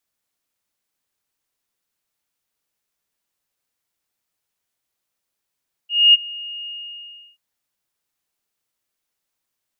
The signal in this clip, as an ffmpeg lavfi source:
-f lavfi -i "aevalsrc='0.501*sin(2*PI*2850*t)':d=1.482:s=44100,afade=t=in:d=0.247,afade=t=out:st=0.247:d=0.025:silence=0.075,afade=t=out:st=0.78:d=0.702"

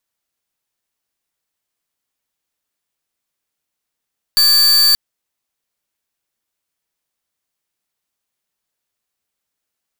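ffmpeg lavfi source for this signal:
-f lavfi -i "aevalsrc='0.282*(2*lt(mod(4580*t,1),0.44)-1)':d=0.58:s=44100"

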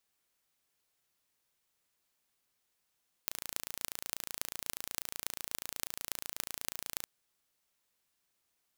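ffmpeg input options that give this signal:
-f lavfi -i "aevalsrc='0.531*eq(mod(n,1564),0)*(0.5+0.5*eq(mod(n,12512),0))':d=3.78:s=44100"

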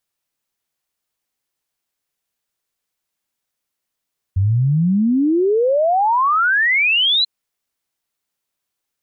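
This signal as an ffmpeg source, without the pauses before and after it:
-f lavfi -i "aevalsrc='0.237*clip(min(t,2.89-t)/0.01,0,1)*sin(2*PI*91*2.89/log(4100/91)*(exp(log(4100/91)*t/2.89)-1))':d=2.89:s=44100"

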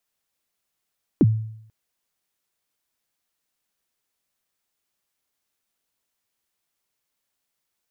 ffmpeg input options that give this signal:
-f lavfi -i "aevalsrc='0.335*pow(10,-3*t/0.71)*sin(2*PI*(380*0.039/log(110/380)*(exp(log(110/380)*min(t,0.039)/0.039)-1)+110*max(t-0.039,0)))':d=0.49:s=44100"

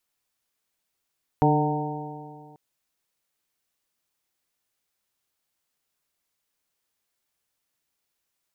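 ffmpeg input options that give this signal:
-f lavfi -i "aevalsrc='0.1*pow(10,-3*t/2.12)*sin(2*PI*148.13*t)+0.0891*pow(10,-3*t/2.12)*sin(2*PI*297.06*t)+0.0708*pow(10,-3*t/2.12)*sin(2*PI*447.58*t)+0.0355*pow(10,-3*t/2.12)*sin(2*PI*600.46*t)+0.0891*pow(10,-3*t/2.12)*sin(2*PI*756.47*t)+0.0668*pow(10,-3*t/2.12)*sin(2*PI*916.32*t)':d=1.14:s=44100"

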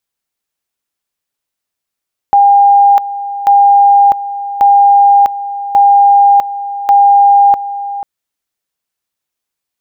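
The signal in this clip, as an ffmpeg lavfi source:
-f lavfi -i "aevalsrc='pow(10,(-3-14*gte(mod(t,1.14),0.65))/20)*sin(2*PI*805*t)':d=5.7:s=44100"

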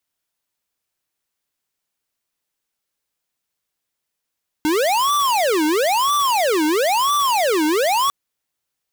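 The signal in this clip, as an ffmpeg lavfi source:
-f lavfi -i "aevalsrc='0.133*(2*lt(mod((736.5*t-433.5/(2*PI*1)*sin(2*PI*1*t)),1),0.5)-1)':d=3.45:s=44100"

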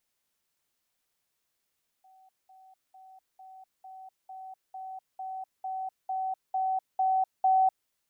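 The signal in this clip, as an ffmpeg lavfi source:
-f lavfi -i "aevalsrc='pow(10,(-55.5+3*floor(t/0.45))/20)*sin(2*PI*758*t)*clip(min(mod(t,0.45),0.25-mod(t,0.45))/0.005,0,1)':d=5.85:s=44100"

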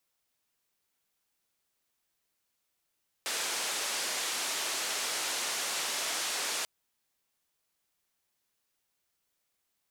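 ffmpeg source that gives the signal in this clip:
-f lavfi -i "anoisesrc=c=white:d=3.39:r=44100:seed=1,highpass=f=380,lowpass=f=8100,volume=-24.3dB"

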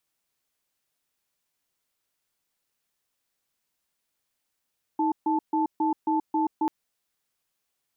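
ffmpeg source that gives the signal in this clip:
-f lavfi -i "aevalsrc='0.0631*(sin(2*PI*315*t)+sin(2*PI*877*t))*clip(min(mod(t,0.27),0.13-mod(t,0.27))/0.005,0,1)':d=1.69:s=44100"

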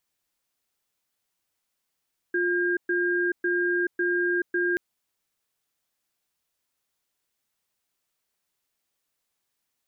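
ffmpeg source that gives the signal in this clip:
-f lavfi -i "aevalsrc='0.0596*(sin(2*PI*352*t)+sin(2*PI*1610*t))*clip(min(mod(t,0.55),0.43-mod(t,0.55))/0.005,0,1)':d=2.43:s=44100"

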